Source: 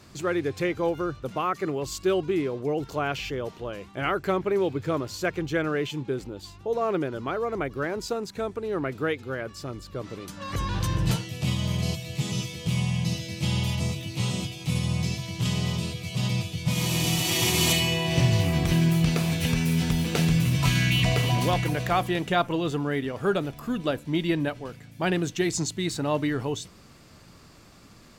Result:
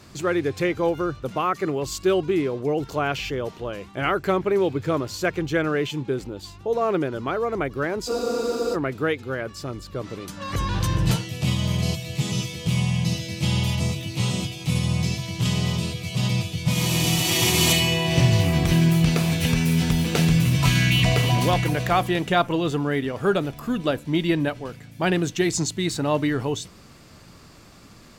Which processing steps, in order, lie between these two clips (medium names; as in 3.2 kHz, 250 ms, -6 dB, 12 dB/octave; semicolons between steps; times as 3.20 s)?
hard clipper -12 dBFS, distortion -47 dB; spectral freeze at 8.11 s, 0.63 s; trim +3.5 dB